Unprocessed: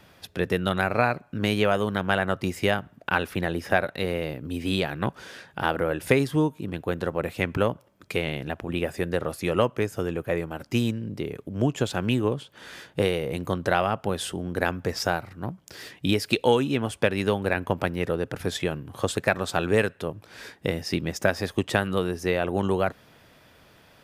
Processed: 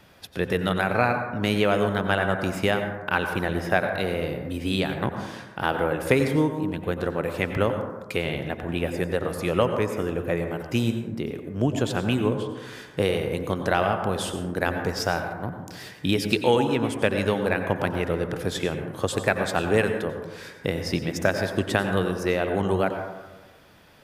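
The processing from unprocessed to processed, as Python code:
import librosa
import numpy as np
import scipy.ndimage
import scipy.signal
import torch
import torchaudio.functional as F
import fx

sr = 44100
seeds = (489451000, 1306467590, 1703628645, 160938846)

y = fx.rev_plate(x, sr, seeds[0], rt60_s=1.2, hf_ratio=0.3, predelay_ms=80, drr_db=6.0)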